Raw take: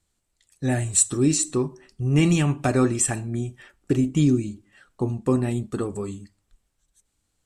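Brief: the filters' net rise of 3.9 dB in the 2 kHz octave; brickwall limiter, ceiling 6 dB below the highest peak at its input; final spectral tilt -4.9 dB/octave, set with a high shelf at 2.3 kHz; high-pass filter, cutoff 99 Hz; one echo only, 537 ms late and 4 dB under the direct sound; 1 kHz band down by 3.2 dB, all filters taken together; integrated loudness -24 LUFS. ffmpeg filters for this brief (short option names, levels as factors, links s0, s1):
-af "highpass=99,equalizer=f=1000:t=o:g=-6.5,equalizer=f=2000:t=o:g=9,highshelf=f=2300:g=-4,alimiter=limit=0.224:level=0:latency=1,aecho=1:1:537:0.631,volume=1.06"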